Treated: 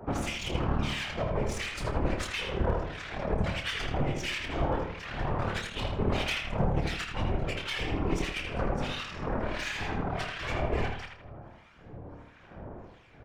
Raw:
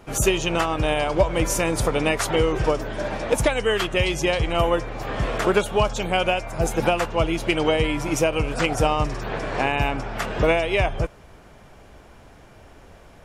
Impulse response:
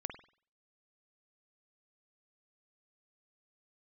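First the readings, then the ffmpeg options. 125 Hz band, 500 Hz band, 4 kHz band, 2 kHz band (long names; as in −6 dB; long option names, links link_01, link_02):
−5.5 dB, −13.0 dB, −7.5 dB, −8.5 dB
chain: -filter_complex "[0:a]highpass=44,highshelf=frequency=3700:gain=-9.5,acrossover=split=170|1900[link_01][link_02][link_03];[link_01]acompressor=threshold=-33dB:ratio=4[link_04];[link_02]acompressor=threshold=-35dB:ratio=4[link_05];[link_03]acompressor=threshold=-34dB:ratio=4[link_06];[link_04][link_05][link_06]amix=inputs=3:normalize=0,aeval=exprs='0.188*(cos(1*acos(clip(val(0)/0.188,-1,1)))-cos(1*PI/2))+0.0473*(cos(5*acos(clip(val(0)/0.188,-1,1)))-cos(5*PI/2))+0.075*(cos(8*acos(clip(val(0)/0.188,-1,1)))-cos(8*PI/2))':channel_layout=same,aphaser=in_gain=1:out_gain=1:delay=4.9:decay=0.37:speed=0.16:type=sinusoidal,acrossover=split=1400[link_07][link_08];[link_07]aeval=exprs='val(0)*(1-1/2+1/2*cos(2*PI*1.5*n/s))':channel_layout=same[link_09];[link_08]aeval=exprs='val(0)*(1-1/2-1/2*cos(2*PI*1.5*n/s))':channel_layout=same[link_10];[link_09][link_10]amix=inputs=2:normalize=0,acrossover=split=490[link_11][link_12];[link_12]adynamicsmooth=sensitivity=2.5:basefreq=5100[link_13];[link_11][link_13]amix=inputs=2:normalize=0,afftfilt=real='hypot(re,im)*cos(2*PI*random(0))':imag='hypot(re,im)*sin(2*PI*random(1))':win_size=512:overlap=0.75,aeval=exprs='clip(val(0),-1,0.0841)':channel_layout=same,asplit=2[link_14][link_15];[link_15]adelay=28,volume=-8.5dB[link_16];[link_14][link_16]amix=inputs=2:normalize=0,asplit=2[link_17][link_18];[link_18]adelay=80,lowpass=frequency=3900:poles=1,volume=-4dB,asplit=2[link_19][link_20];[link_20]adelay=80,lowpass=frequency=3900:poles=1,volume=0.42,asplit=2[link_21][link_22];[link_22]adelay=80,lowpass=frequency=3900:poles=1,volume=0.42,asplit=2[link_23][link_24];[link_24]adelay=80,lowpass=frequency=3900:poles=1,volume=0.42,asplit=2[link_25][link_26];[link_26]adelay=80,lowpass=frequency=3900:poles=1,volume=0.42[link_27];[link_19][link_21][link_23][link_25][link_27]amix=inputs=5:normalize=0[link_28];[link_17][link_28]amix=inputs=2:normalize=0"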